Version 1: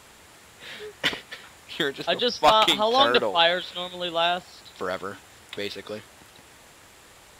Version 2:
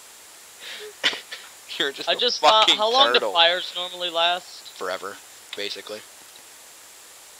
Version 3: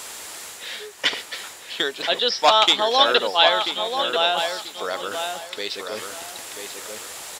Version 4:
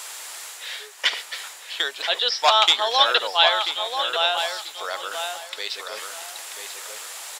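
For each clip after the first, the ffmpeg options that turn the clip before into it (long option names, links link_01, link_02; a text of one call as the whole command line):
ffmpeg -i in.wav -filter_complex "[0:a]acrossover=split=6500[link_01][link_02];[link_02]acompressor=threshold=-56dB:ratio=4:attack=1:release=60[link_03];[link_01][link_03]amix=inputs=2:normalize=0,bass=frequency=250:gain=-14,treble=frequency=4000:gain=10,volume=1.5dB" out.wav
ffmpeg -i in.wav -filter_complex "[0:a]areverse,acompressor=mode=upward:threshold=-26dB:ratio=2.5,areverse,asplit=2[link_01][link_02];[link_02]adelay=987,lowpass=frequency=2500:poles=1,volume=-6dB,asplit=2[link_03][link_04];[link_04]adelay=987,lowpass=frequency=2500:poles=1,volume=0.26,asplit=2[link_05][link_06];[link_06]adelay=987,lowpass=frequency=2500:poles=1,volume=0.26[link_07];[link_01][link_03][link_05][link_07]amix=inputs=4:normalize=0" out.wav
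ffmpeg -i in.wav -af "highpass=690" out.wav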